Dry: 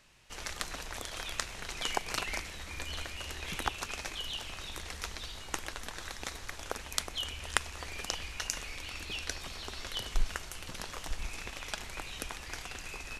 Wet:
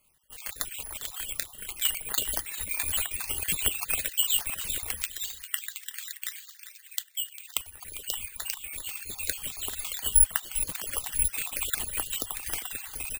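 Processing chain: random holes in the spectrogram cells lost 37%; reverb removal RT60 1.4 s; 5.02–7.49 s: Chebyshev high-pass 1.8 kHz, order 3; dynamic bell 3 kHz, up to +7 dB, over -55 dBFS, Q 1.5; level rider gain up to 15 dB; delay 400 ms -15 dB; careless resampling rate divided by 4×, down filtered, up zero stuff; random flutter of the level, depth 50%; trim -7.5 dB

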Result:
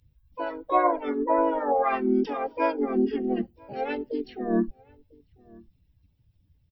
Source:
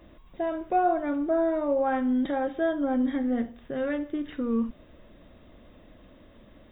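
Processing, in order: expander on every frequency bin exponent 2; echo from a far wall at 170 m, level -26 dB; harmony voices -3 st -5 dB, +5 st -10 dB, +7 st 0 dB

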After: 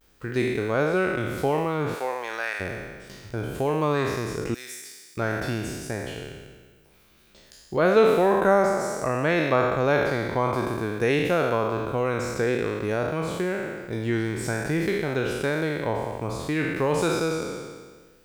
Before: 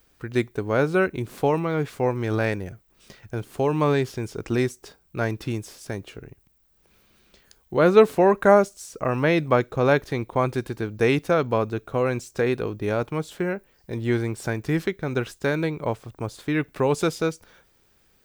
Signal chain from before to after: spectral sustain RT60 1.46 s; 1.93–2.60 s: high-pass 490 Hz -> 1.1 kHz 12 dB/octave; 4.55–5.17 s: differentiator; in parallel at -1 dB: compression, threshold -25 dBFS, peak gain reduction 16.5 dB; on the sum: vibrato 0.55 Hz 46 cents; trim -6.5 dB

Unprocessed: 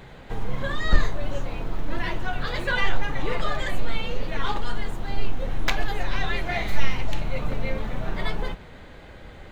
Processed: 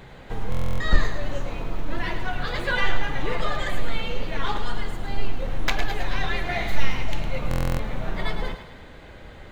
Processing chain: thinning echo 108 ms, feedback 52%, level -8.5 dB; buffer glitch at 0.50/7.49 s, samples 1024, times 12

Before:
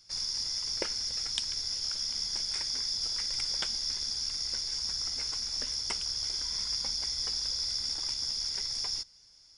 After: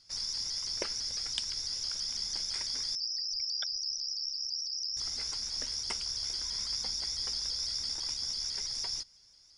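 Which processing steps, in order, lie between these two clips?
2.95–4.97 s: resonances exaggerated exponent 3; vibrato with a chosen wave saw up 6 Hz, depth 100 cents; trim -2 dB

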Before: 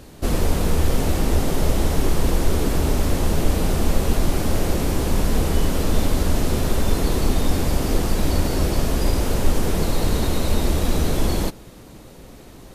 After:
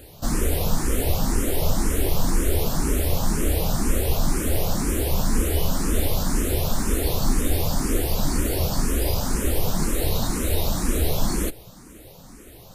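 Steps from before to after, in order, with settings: treble shelf 8 kHz +10.5 dB; barber-pole phaser +2 Hz

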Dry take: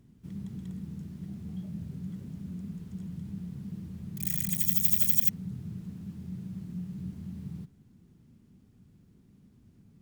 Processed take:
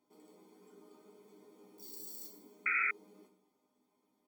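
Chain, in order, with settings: high-pass 400 Hz 6 dB/octave; chord resonator F2 major, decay 0.41 s; plate-style reverb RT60 1.9 s, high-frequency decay 0.95×, DRR 5.5 dB; painted sound noise, 6.22–6.81 s, 550–1100 Hz -37 dBFS; comb 2.1 ms, depth 79%; speed mistake 33 rpm record played at 78 rpm; trim +3.5 dB

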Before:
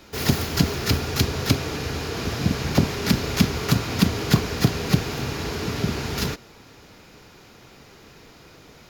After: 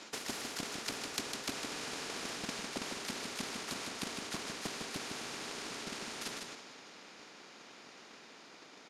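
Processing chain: Doppler pass-by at 2.05 s, 6 m/s, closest 3.7 m; Chebyshev band-pass 240–8700 Hz, order 3; reverse; compression 6:1, threshold -43 dBFS, peak gain reduction 21 dB; reverse; transient shaper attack +11 dB, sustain +7 dB; on a send: delay 154 ms -8 dB; on the sum: spectrum-flattening compressor 2:1; trim +2.5 dB

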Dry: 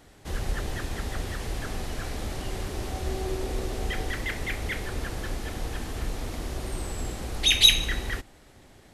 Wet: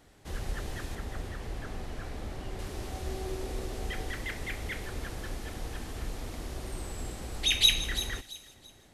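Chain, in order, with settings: 0.95–2.59 s: treble shelf 3.5 kHz -9 dB; feedback echo behind a high-pass 336 ms, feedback 31%, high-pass 5 kHz, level -6.5 dB; trim -5.5 dB

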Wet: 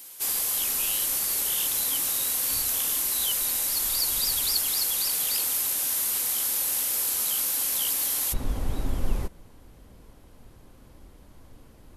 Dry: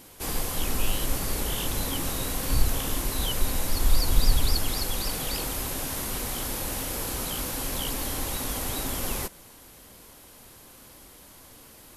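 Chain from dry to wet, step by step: tilt EQ +4 dB/octave, from 8.32 s -3 dB/octave; trim -5.5 dB

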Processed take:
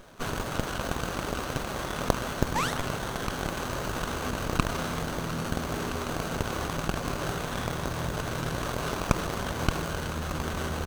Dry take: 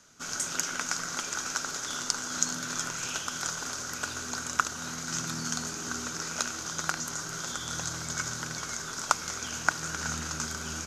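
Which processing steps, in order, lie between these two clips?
comb 1.8 ms, depth 36%; in parallel at +3 dB: compressor with a negative ratio -38 dBFS, ratio -0.5; on the sum: painted sound rise, 2.55–2.80 s, 800–3500 Hz -24 dBFS; sliding maximum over 17 samples

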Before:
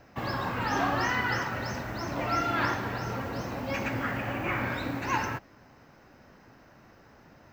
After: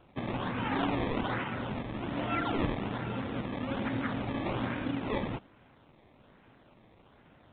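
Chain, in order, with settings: dynamic bell 230 Hz, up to +7 dB, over -48 dBFS, Q 1.1; decimation with a swept rate 21×, swing 100% 1.2 Hz; trim -4.5 dB; A-law 64 kbps 8 kHz

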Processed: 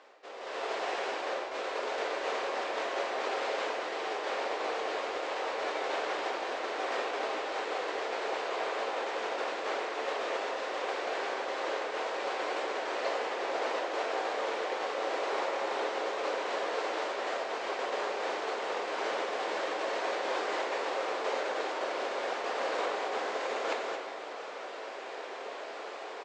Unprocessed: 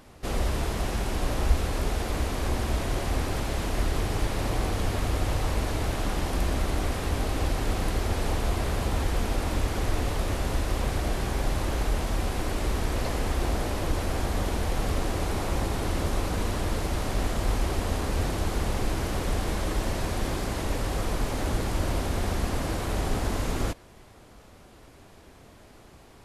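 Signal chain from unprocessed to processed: distance through air 140 m; delay 239 ms -16 dB; reverse; compression 12:1, threshold -37 dBFS, peak gain reduction 23 dB; reverse; elliptic band-pass 450–7900 Hz, stop band 50 dB; level rider gain up to 14 dB; on a send at -3 dB: reverberation RT60 1.6 s, pre-delay 8 ms

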